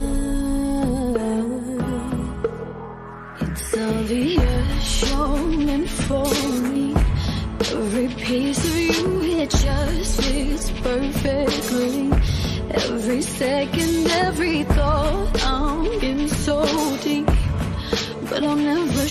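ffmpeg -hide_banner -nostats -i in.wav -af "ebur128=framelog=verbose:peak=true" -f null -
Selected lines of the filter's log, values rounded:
Integrated loudness:
  I:         -21.6 LUFS
  Threshold: -31.7 LUFS
Loudness range:
  LRA:         3.8 LU
  Threshold: -41.6 LUFS
  LRA low:   -24.3 LUFS
  LRA high:  -20.5 LUFS
True peak:
  Peak:       -5.7 dBFS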